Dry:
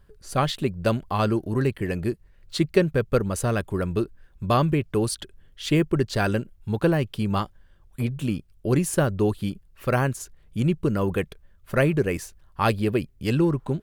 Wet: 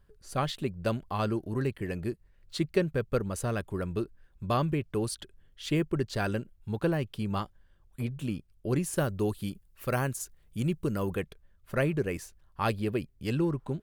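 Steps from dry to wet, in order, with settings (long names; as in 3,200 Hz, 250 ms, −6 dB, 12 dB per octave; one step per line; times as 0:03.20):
0:08.96–0:11.15: high-shelf EQ 6,200 Hz +10 dB
level −7 dB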